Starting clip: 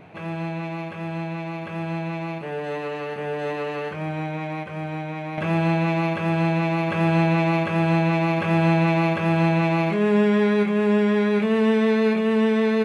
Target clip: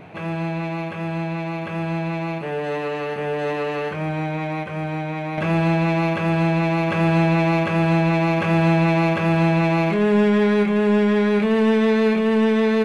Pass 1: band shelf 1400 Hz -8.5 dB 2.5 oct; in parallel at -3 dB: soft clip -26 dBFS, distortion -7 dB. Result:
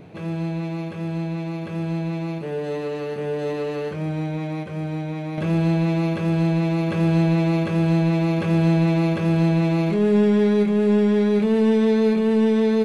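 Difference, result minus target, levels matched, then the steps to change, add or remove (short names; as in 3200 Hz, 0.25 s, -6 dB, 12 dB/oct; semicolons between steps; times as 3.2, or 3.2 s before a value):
1000 Hz band -7.0 dB
remove: band shelf 1400 Hz -8.5 dB 2.5 oct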